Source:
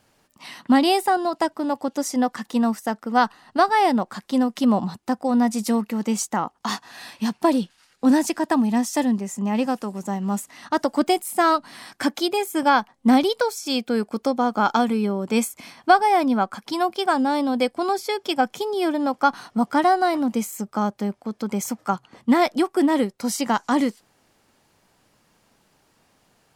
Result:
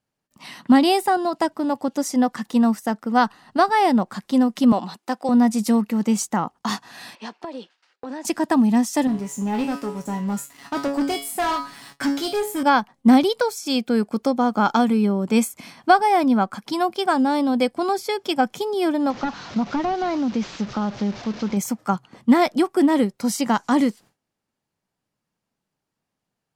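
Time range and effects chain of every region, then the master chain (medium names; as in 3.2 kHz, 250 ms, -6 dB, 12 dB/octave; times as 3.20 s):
4.72–5.29 s: high-pass 370 Hz + dynamic bell 3.2 kHz, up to +7 dB, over -46 dBFS, Q 0.89
7.15–8.25 s: high-pass 370 Hz 24 dB/octave + distance through air 130 m + compression 12:1, threshold -29 dBFS
9.07–12.63 s: feedback comb 140 Hz, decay 0.36 s, mix 90% + waveshaping leveller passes 3
19.10–21.57 s: one-bit delta coder 32 kbps, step -32.5 dBFS + compression 2.5:1, threshold -22 dBFS + tape noise reduction on one side only encoder only
whole clip: gate with hold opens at -49 dBFS; peaking EQ 160 Hz +5.5 dB 1.4 oct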